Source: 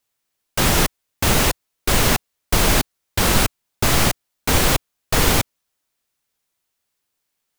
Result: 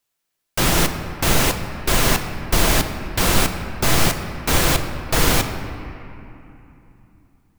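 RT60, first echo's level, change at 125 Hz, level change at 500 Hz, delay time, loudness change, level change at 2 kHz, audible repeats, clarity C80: 3.0 s, no echo, 0.0 dB, 0.0 dB, no echo, -0.5 dB, 0.0 dB, no echo, 9.0 dB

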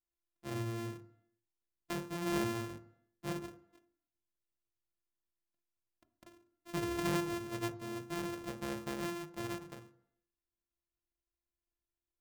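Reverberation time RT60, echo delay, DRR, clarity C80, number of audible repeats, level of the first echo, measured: 0.70 s, no echo, 9.5 dB, 18.0 dB, no echo, no echo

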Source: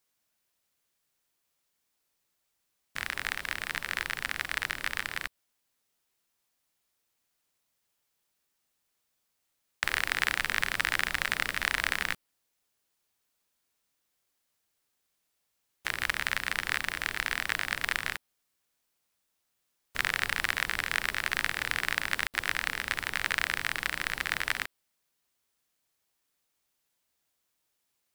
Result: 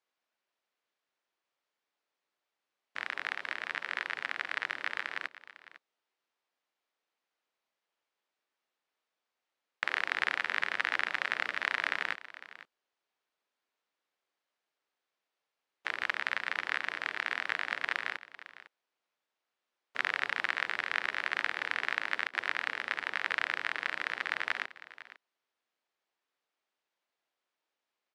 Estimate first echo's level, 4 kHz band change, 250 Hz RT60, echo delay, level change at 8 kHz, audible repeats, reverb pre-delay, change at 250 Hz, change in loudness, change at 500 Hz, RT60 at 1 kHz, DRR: -16.5 dB, -5.5 dB, no reverb, 503 ms, -16.5 dB, 1, no reverb, -7.0 dB, -3.0 dB, -1.5 dB, no reverb, no reverb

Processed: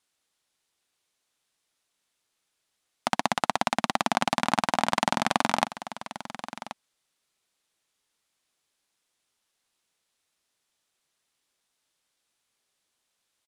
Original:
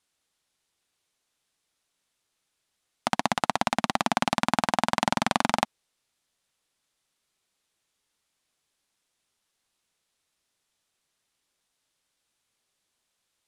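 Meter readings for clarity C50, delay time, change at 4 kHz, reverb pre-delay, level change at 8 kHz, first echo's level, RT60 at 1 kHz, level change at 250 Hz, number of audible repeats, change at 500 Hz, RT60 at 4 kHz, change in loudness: no reverb, 1081 ms, 0.0 dB, no reverb, 0.0 dB, -13.5 dB, no reverb, -1.5 dB, 1, 0.0 dB, no reverb, 0.0 dB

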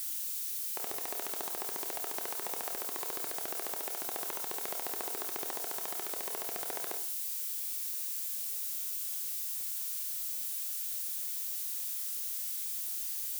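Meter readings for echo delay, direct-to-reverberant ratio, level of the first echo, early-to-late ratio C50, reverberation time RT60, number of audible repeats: no echo, 4.0 dB, no echo, 8.5 dB, 0.55 s, no echo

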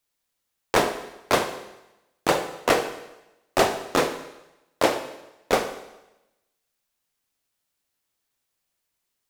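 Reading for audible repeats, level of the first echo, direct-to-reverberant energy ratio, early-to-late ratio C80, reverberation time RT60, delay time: no echo, no echo, 8.0 dB, 12.0 dB, 0.95 s, no echo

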